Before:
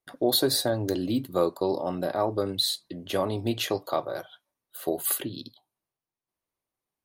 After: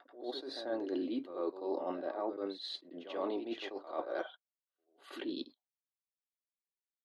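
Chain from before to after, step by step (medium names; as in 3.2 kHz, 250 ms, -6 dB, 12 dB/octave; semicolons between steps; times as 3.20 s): gate -45 dBFS, range -36 dB; elliptic band-pass 300–9900 Hz, stop band 50 dB; reverse; compression 10:1, threshold -39 dBFS, peak gain reduction 19.5 dB; reverse; distance through air 270 m; on a send: reverse echo 88 ms -10 dB; on the sum: attacks held to a fixed rise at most 130 dB/s; trim +6.5 dB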